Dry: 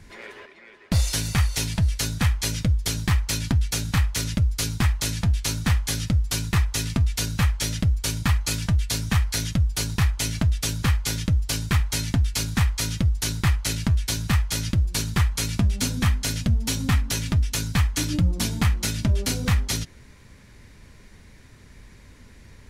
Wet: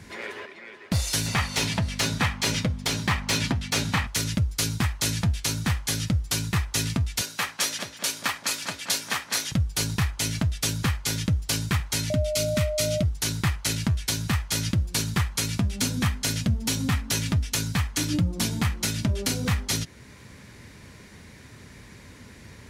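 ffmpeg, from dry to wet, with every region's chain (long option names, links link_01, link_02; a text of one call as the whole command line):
ffmpeg -i in.wav -filter_complex "[0:a]asettb=1/sr,asplit=3[link_01][link_02][link_03];[link_01]atrim=end=1.264[link_04];[link_02]atrim=start=1.26:end=4.07,asetpts=PTS-STARTPTS,afade=type=in:duration=0.004:curve=qsin,afade=type=out:start_time=2.806:duration=0.004:curve=qsin,equalizer=frequency=1500:width_type=o:width=0.43:gain=-3.5,aeval=exprs='val(0)+0.0282*(sin(2*PI*50*n/s)+sin(2*PI*2*50*n/s)/2+sin(2*PI*3*50*n/s)/3+sin(2*PI*4*50*n/s)/4+sin(2*PI*5*50*n/s)/5)':channel_layout=same,asplit=2[link_05][link_06];[link_06]highpass=frequency=720:poles=1,volume=16dB,asoftclip=type=tanh:threshold=-9.5dB[link_07];[link_05][link_07]amix=inputs=2:normalize=0,lowpass=frequency=1900:poles=1,volume=-6dB[link_08];[link_03]atrim=start=4.066[link_09];[link_04][link_08]acrossfade=duration=0.004:curve1=hsin:curve2=qsin[link_10];[link_10][link_09]acrossfade=duration=0.004:curve1=qsin:curve2=hsin,asettb=1/sr,asplit=3[link_11][link_12][link_13];[link_11]atrim=end=7.214[link_14];[link_12]atrim=start=7.21:end=9.52,asetpts=PTS-STARTPTS,afade=type=in:duration=0.004:curve=qsin,afade=type=out:start_time=2.306:duration=0.004:curve=qsin,highpass=500,asplit=2[link_15][link_16];[link_16]adelay=200,lowpass=frequency=2800:poles=1,volume=-6.5dB,asplit=2[link_17][link_18];[link_18]adelay=200,lowpass=frequency=2800:poles=1,volume=0.52,asplit=2[link_19][link_20];[link_20]adelay=200,lowpass=frequency=2800:poles=1,volume=0.52,asplit=2[link_21][link_22];[link_22]adelay=200,lowpass=frequency=2800:poles=1,volume=0.52,asplit=2[link_23][link_24];[link_24]adelay=200,lowpass=frequency=2800:poles=1,volume=0.52,asplit=2[link_25][link_26];[link_26]adelay=200,lowpass=frequency=2800:poles=1,volume=0.52[link_27];[link_15][link_17][link_19][link_21][link_23][link_25][link_27]amix=inputs=7:normalize=0,atrim=end_sample=101871[link_28];[link_13]atrim=start=9.516[link_29];[link_14][link_28]acrossfade=duration=0.004:curve1=hsin:curve2=qsin[link_30];[link_30][link_29]acrossfade=duration=0.004:curve1=qsin:curve2=hsin,asettb=1/sr,asplit=3[link_31][link_32][link_33];[link_31]atrim=end=12.104[link_34];[link_32]atrim=start=12.1:end=13.03,asetpts=PTS-STARTPTS,afade=type=in:duration=0.004:curve=qsin,afade=type=out:start_time=0.926:duration=0.004:curve=qsin,equalizer=frequency=760:width=1.7:gain=-14.5,aeval=exprs='val(0)+0.0501*sin(2*PI*610*n/s)':channel_layout=same,asuperstop=centerf=1700:order=4:qfactor=7.4[link_35];[link_33]atrim=start=13.026[link_36];[link_34][link_35]acrossfade=duration=0.004:curve1=hsin:curve2=qsin[link_37];[link_37][link_36]acrossfade=duration=0.004:curve1=qsin:curve2=hsin,alimiter=limit=-17.5dB:level=0:latency=1:release=490,highpass=90,acontrast=24" out.wav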